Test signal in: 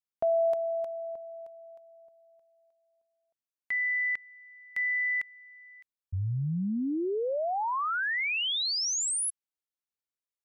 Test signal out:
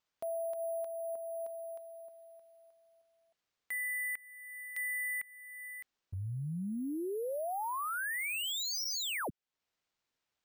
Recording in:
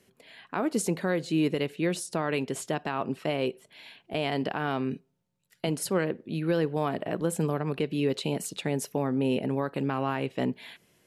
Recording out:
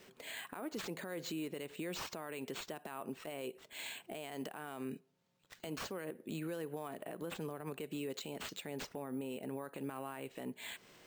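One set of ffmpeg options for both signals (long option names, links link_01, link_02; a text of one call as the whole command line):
ffmpeg -i in.wav -af "highpass=frequency=310:poles=1,alimiter=level_in=4dB:limit=-24dB:level=0:latency=1:release=114,volume=-4dB,acompressor=threshold=-42dB:ratio=6:attack=0.13:release=917:knee=1:detection=peak,acrusher=samples=4:mix=1:aa=0.000001,volume=6.5dB" out.wav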